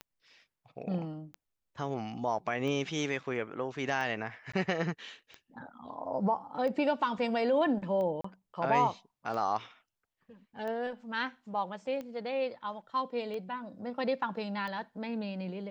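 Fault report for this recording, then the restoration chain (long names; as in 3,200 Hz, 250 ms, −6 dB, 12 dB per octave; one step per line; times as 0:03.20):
scratch tick 45 rpm −28 dBFS
0:04.52–0:04.54: drop-out 15 ms
0:08.21–0:08.24: drop-out 34 ms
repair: click removal
repair the gap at 0:04.52, 15 ms
repair the gap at 0:08.21, 34 ms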